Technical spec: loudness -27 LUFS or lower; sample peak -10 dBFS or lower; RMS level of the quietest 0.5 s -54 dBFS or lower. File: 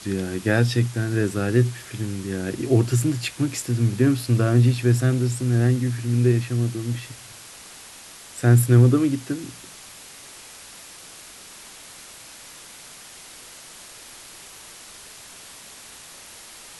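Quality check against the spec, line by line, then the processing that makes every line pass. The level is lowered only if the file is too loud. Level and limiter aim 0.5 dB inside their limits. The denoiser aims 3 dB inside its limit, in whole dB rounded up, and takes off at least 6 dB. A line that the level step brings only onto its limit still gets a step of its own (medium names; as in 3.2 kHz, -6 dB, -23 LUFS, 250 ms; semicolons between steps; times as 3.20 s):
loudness -21.5 LUFS: fail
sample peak -4.5 dBFS: fail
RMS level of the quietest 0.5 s -43 dBFS: fail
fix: noise reduction 8 dB, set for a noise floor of -43 dBFS; trim -6 dB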